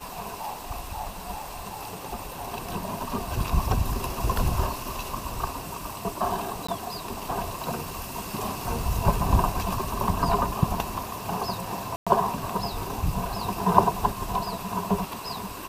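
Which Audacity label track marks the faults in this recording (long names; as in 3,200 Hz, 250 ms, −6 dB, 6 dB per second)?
6.670000	6.680000	drop-out 15 ms
11.960000	12.070000	drop-out 106 ms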